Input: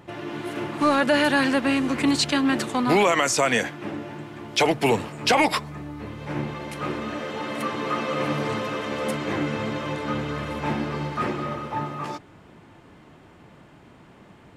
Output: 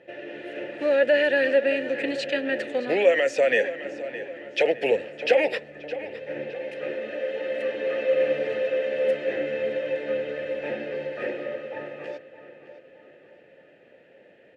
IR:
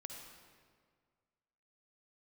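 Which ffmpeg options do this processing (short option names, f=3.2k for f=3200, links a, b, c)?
-filter_complex "[0:a]asplit=3[a][b][c];[a]bandpass=f=530:t=q:w=8,volume=0dB[d];[b]bandpass=f=1.84k:t=q:w=8,volume=-6dB[e];[c]bandpass=f=2.48k:t=q:w=8,volume=-9dB[f];[d][e][f]amix=inputs=3:normalize=0,asplit=2[g][h];[h]adelay=614,lowpass=f=4.6k:p=1,volume=-13.5dB,asplit=2[i][j];[j]adelay=614,lowpass=f=4.6k:p=1,volume=0.46,asplit=2[k][l];[l]adelay=614,lowpass=f=4.6k:p=1,volume=0.46,asplit=2[m][n];[n]adelay=614,lowpass=f=4.6k:p=1,volume=0.46[o];[g][i][k][m][o]amix=inputs=5:normalize=0,volume=9dB"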